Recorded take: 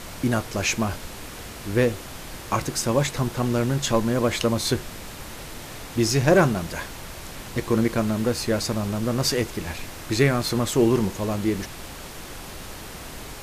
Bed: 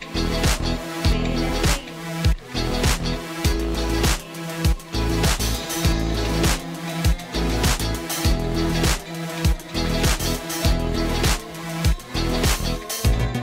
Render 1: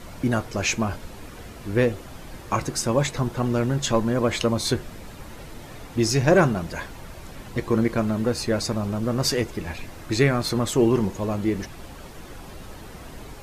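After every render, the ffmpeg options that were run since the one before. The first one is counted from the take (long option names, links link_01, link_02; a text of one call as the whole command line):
ffmpeg -i in.wav -af "afftdn=noise_reduction=9:noise_floor=-39" out.wav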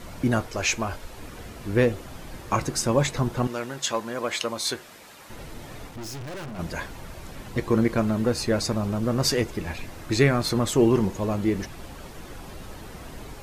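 ffmpeg -i in.wav -filter_complex "[0:a]asettb=1/sr,asplit=3[link_01][link_02][link_03];[link_01]atrim=end=0.464[link_04];[link_02]atrim=start=0.46:end=1.18,asetpts=PTS-STARTPTS,afade=type=in:duration=0.004:curve=qsin,afade=type=out:start_time=0.716:duration=0.004:curve=qsin,equalizer=frequency=170:width_type=o:width=1.6:gain=-9[link_05];[link_03]atrim=start=1.176[link_06];[link_04][link_05]acrossfade=duration=0.004:curve1=hsin:curve2=qsin[link_07];[link_07][link_06]acrossfade=duration=0.004:curve1=qsin:curve2=hsin,asettb=1/sr,asplit=3[link_08][link_09][link_10];[link_08]atrim=end=3.474[link_11];[link_09]atrim=start=3.47:end=5.3,asetpts=PTS-STARTPTS,afade=type=in:duration=0.004:curve=qsin,afade=type=out:start_time=1.826:duration=0.004:curve=qsin,highpass=frequency=900:poles=1[link_12];[link_10]atrim=start=5.296[link_13];[link_11][link_12]acrossfade=duration=0.004:curve1=hsin:curve2=qsin[link_14];[link_14][link_13]acrossfade=duration=0.004:curve1=qsin:curve2=hsin,asplit=3[link_15][link_16][link_17];[link_15]afade=type=out:start_time=5.88:duration=0.02[link_18];[link_16]aeval=exprs='(tanh(56.2*val(0)+0.5)-tanh(0.5))/56.2':channel_layout=same,afade=type=in:start_time=5.88:duration=0.02,afade=type=out:start_time=6.58:duration=0.02[link_19];[link_17]afade=type=in:start_time=6.58:duration=0.02[link_20];[link_18][link_19][link_20]amix=inputs=3:normalize=0" out.wav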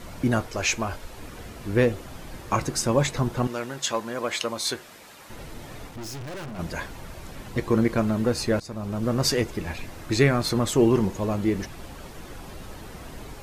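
ffmpeg -i in.wav -filter_complex "[0:a]asplit=2[link_01][link_02];[link_01]atrim=end=8.6,asetpts=PTS-STARTPTS,afade=type=out:start_time=8.596:duration=0.004:curve=hsin:silence=0.112202[link_03];[link_02]atrim=start=8.6,asetpts=PTS-STARTPTS,afade=type=in:duration=0.47:silence=0.112202[link_04];[link_03][link_04]concat=n=2:v=0:a=1" out.wav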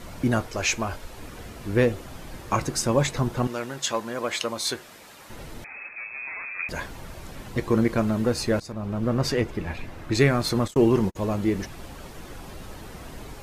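ffmpeg -i in.wav -filter_complex "[0:a]asettb=1/sr,asplit=3[link_01][link_02][link_03];[link_01]atrim=end=5.644[link_04];[link_02]atrim=start=5.64:end=6.69,asetpts=PTS-STARTPTS,afade=type=in:duration=0.004:curve=qsin,afade=type=out:start_time=1.046:duration=0.004:curve=qsin,lowpass=frequency=2200:width_type=q:width=0.5098,lowpass=frequency=2200:width_type=q:width=0.6013,lowpass=frequency=2200:width_type=q:width=0.9,lowpass=frequency=2200:width_type=q:width=2.563,afreqshift=-2600[link_05];[link_03]atrim=start=6.686[link_06];[link_04][link_05]acrossfade=duration=0.004:curve1=hsin:curve2=qsin[link_07];[link_07][link_06]acrossfade=duration=0.004:curve1=qsin:curve2=hsin,asettb=1/sr,asplit=3[link_08][link_09][link_10];[link_08]atrim=end=8.724[link_11];[link_09]atrim=start=8.72:end=10.15,asetpts=PTS-STARTPTS,afade=type=in:duration=0.004:curve=qsin,afade=type=out:start_time=1.426:duration=0.004:curve=qsin,bass=frequency=250:gain=1,treble=frequency=4000:gain=-9[link_12];[link_10]atrim=start=10.146[link_13];[link_11][link_12]acrossfade=duration=0.004:curve1=hsin:curve2=qsin[link_14];[link_14][link_13]acrossfade=duration=0.004:curve1=qsin:curve2=hsin,asplit=3[link_15][link_16][link_17];[link_15]afade=type=out:start_time=10.66:duration=0.02[link_18];[link_16]agate=range=-46dB:threshold=-27dB:ratio=16:release=100:detection=peak,afade=type=in:start_time=10.66:duration=0.02,afade=type=out:start_time=11.15:duration=0.02[link_19];[link_17]afade=type=in:start_time=11.15:duration=0.02[link_20];[link_18][link_19][link_20]amix=inputs=3:normalize=0" out.wav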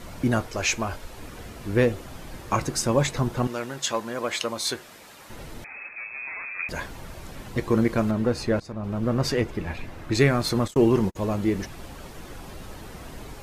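ffmpeg -i in.wav -filter_complex "[0:a]asettb=1/sr,asplit=3[link_01][link_02][link_03];[link_01]atrim=end=8.114[link_04];[link_02]atrim=start=8.11:end=8.84,asetpts=PTS-STARTPTS,afade=type=in:duration=0.004:curve=qsin,afade=type=out:start_time=0.726:duration=0.004:curve=qsin,highshelf=frequency=4900:gain=-10[link_05];[link_03]atrim=start=8.836[link_06];[link_04][link_05]acrossfade=duration=0.004:curve1=hsin:curve2=qsin[link_07];[link_07][link_06]acrossfade=duration=0.004:curve1=qsin:curve2=hsin" out.wav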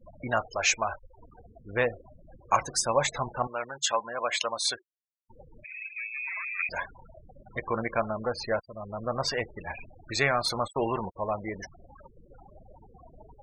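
ffmpeg -i in.wav -af "afftfilt=real='re*gte(hypot(re,im),0.0282)':imag='im*gte(hypot(re,im),0.0282)':win_size=1024:overlap=0.75,lowshelf=frequency=480:width_type=q:width=1.5:gain=-12" out.wav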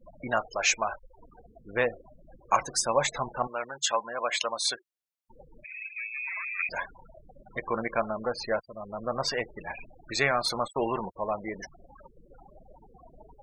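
ffmpeg -i in.wav -af "equalizer=frequency=91:width=2:gain=-11" out.wav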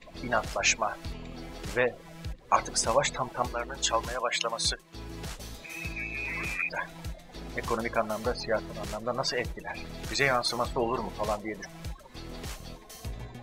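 ffmpeg -i in.wav -i bed.wav -filter_complex "[1:a]volume=-19.5dB[link_01];[0:a][link_01]amix=inputs=2:normalize=0" out.wav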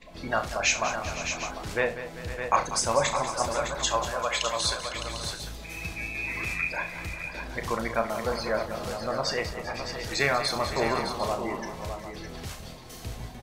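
ffmpeg -i in.wav -filter_complex "[0:a]asplit=2[link_01][link_02];[link_02]adelay=35,volume=-9dB[link_03];[link_01][link_03]amix=inputs=2:normalize=0,aecho=1:1:69|192|392|506|610|749:0.188|0.251|0.141|0.188|0.398|0.211" out.wav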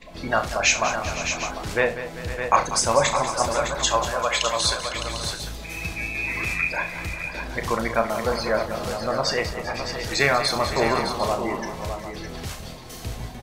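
ffmpeg -i in.wav -af "volume=5dB" out.wav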